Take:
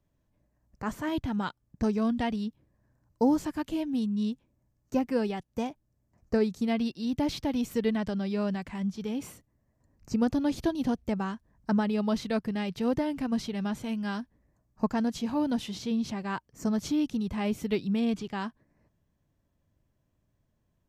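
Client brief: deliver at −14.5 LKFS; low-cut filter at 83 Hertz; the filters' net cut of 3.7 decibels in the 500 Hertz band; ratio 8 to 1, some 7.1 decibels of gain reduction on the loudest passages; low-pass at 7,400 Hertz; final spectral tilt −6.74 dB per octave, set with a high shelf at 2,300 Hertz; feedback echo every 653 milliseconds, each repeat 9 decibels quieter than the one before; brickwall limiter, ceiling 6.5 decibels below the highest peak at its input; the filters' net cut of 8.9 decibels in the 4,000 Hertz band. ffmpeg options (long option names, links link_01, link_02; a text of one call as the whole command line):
ffmpeg -i in.wav -af "highpass=83,lowpass=7400,equalizer=frequency=500:width_type=o:gain=-4,highshelf=frequency=2300:gain=-9,equalizer=frequency=4000:width_type=o:gain=-3,acompressor=threshold=-29dB:ratio=8,alimiter=level_in=2.5dB:limit=-24dB:level=0:latency=1,volume=-2.5dB,aecho=1:1:653|1306|1959|2612:0.355|0.124|0.0435|0.0152,volume=21.5dB" out.wav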